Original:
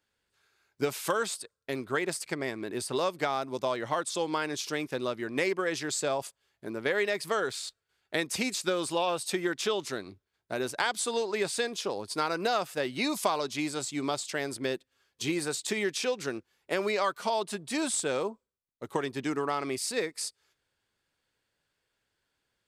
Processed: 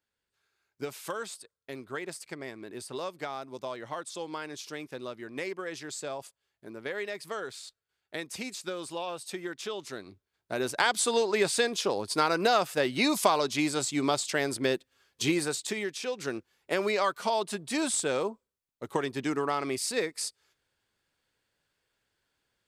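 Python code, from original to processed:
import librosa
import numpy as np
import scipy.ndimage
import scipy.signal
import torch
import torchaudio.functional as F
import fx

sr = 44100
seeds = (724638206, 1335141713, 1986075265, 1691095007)

y = fx.gain(x, sr, db=fx.line((9.69, -7.0), (10.91, 4.0), (15.28, 4.0), (15.99, -5.5), (16.33, 1.0)))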